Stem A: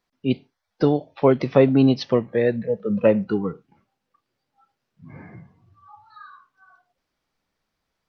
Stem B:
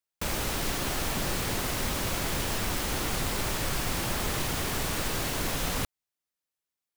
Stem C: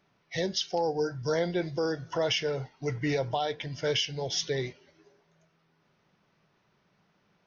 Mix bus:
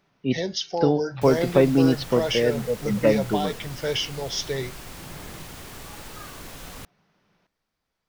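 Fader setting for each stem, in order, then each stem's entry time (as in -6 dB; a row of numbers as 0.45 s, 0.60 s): -2.5 dB, -10.0 dB, +2.0 dB; 0.00 s, 1.00 s, 0.00 s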